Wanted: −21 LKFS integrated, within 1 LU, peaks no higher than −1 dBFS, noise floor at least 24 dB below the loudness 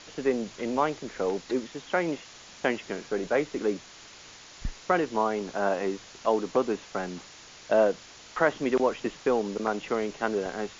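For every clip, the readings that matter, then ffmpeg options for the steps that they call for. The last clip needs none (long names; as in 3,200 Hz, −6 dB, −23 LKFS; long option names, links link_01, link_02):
background noise floor −49 dBFS; target noise floor −53 dBFS; integrated loudness −29.0 LKFS; sample peak −10.5 dBFS; target loudness −21.0 LKFS
→ -af "afftdn=noise_reduction=6:noise_floor=-49"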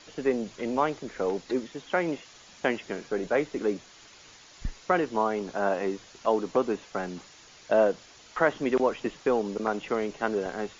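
background noise floor −53 dBFS; integrated loudness −29.0 LKFS; sample peak −10.5 dBFS; target loudness −21.0 LKFS
→ -af "volume=8dB"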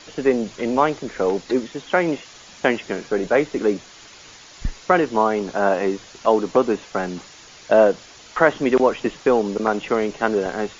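integrated loudness −21.0 LKFS; sample peak −2.5 dBFS; background noise floor −45 dBFS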